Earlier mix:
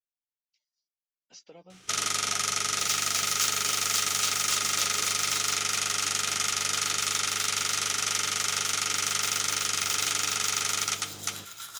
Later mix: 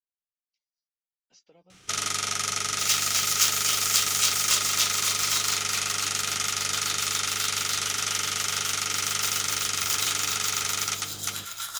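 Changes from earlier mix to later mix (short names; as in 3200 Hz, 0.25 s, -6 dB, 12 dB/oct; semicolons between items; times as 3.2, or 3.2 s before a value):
speech -8.5 dB; second sound +7.0 dB; master: add low shelf 100 Hz +7.5 dB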